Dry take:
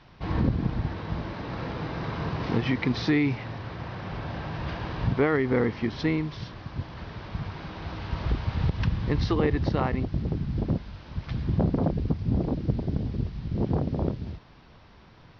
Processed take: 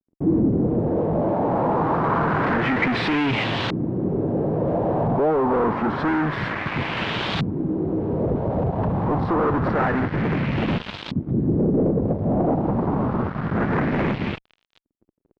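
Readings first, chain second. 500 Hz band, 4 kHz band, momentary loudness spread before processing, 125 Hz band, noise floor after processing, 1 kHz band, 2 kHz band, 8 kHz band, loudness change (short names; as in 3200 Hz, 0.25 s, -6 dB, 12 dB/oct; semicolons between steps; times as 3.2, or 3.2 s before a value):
+9.0 dB, +8.0 dB, 12 LU, +3.0 dB, -73 dBFS, +12.0 dB, +8.5 dB, n/a, +6.5 dB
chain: HPF 180 Hz 12 dB/oct; dynamic EQ 1700 Hz, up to -4 dB, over -44 dBFS, Q 0.7; fuzz box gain 42 dB, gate -47 dBFS; LFO low-pass saw up 0.27 Hz 270–3700 Hz; gain -7 dB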